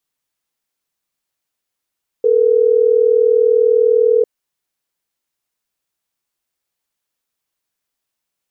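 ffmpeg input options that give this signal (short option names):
-f lavfi -i "aevalsrc='0.251*(sin(2*PI*440*t)+sin(2*PI*480*t))*clip(min(mod(t,6),2-mod(t,6))/0.005,0,1)':d=3.12:s=44100"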